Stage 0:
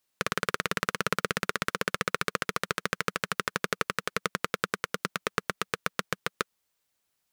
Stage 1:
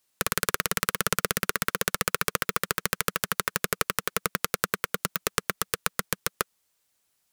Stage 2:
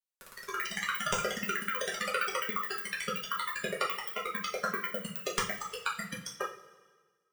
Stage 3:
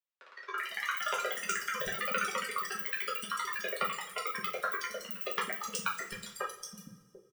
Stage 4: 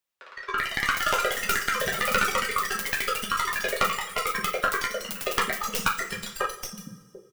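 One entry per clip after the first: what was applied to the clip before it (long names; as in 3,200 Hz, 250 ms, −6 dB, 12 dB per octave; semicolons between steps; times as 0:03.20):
parametric band 9,400 Hz +4 dB 1.6 octaves; wrap-around overflow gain 6 dB; level +3 dB
automatic gain control gain up to 13 dB; noise reduction from a noise print of the clip's start 21 dB; coupled-rooms reverb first 0.34 s, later 1.5 s, from −17 dB, DRR −5 dB; level −8.5 dB
low-shelf EQ 200 Hz −10 dB; three-band delay without the direct sound mids, highs, lows 370/740 ms, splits 320/4,100 Hz
stylus tracing distortion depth 0.44 ms; level +9 dB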